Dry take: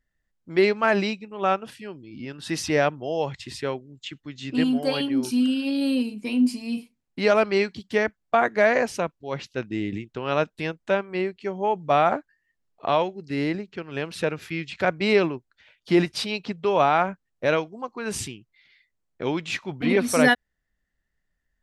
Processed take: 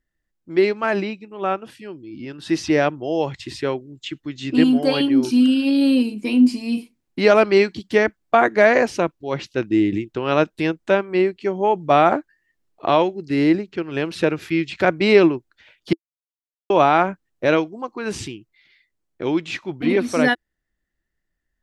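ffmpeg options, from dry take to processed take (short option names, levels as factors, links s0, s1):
-filter_complex "[0:a]asettb=1/sr,asplit=3[s0][s1][s2];[s0]atrim=end=1.004[s3];[s1]atrim=start=1:end=1.7,asetpts=PTS-STARTPTS,afade=t=in:d=0.004:c=qsin,afade=t=out:st=0.696:d=0.004:c=qsin,acrossover=split=3400[s4][s5];[s5]acompressor=threshold=0.00316:ratio=4:attack=1:release=60[s6];[s4][s6]amix=inputs=2:normalize=0[s7];[s2]atrim=start=1.696[s8];[s3][s7]acrossfade=d=0.004:c1=hsin:c2=qsin[s9];[s9][s8]acrossfade=d=0.004:c1=qsin:c2=hsin,asplit=3[s10][s11][s12];[s10]atrim=end=15.93,asetpts=PTS-STARTPTS,afade=t=out:st=15.926:d=0.004:c=hsin[s13];[s11]atrim=start=15.93:end=16.7,asetpts=PTS-STARTPTS,volume=0[s14];[s12]atrim=start=16.7,asetpts=PTS-STARTPTS,afade=t=in:d=0.004:c=hsin[s15];[s13][s14][s15]concat=n=3:v=0:a=1,acrossover=split=6600[s16][s17];[s17]acompressor=threshold=0.00316:ratio=4:attack=1:release=60[s18];[s16][s18]amix=inputs=2:normalize=0,equalizer=f=330:t=o:w=0.37:g=8.5,dynaudnorm=f=330:g=17:m=3.76,volume=0.891"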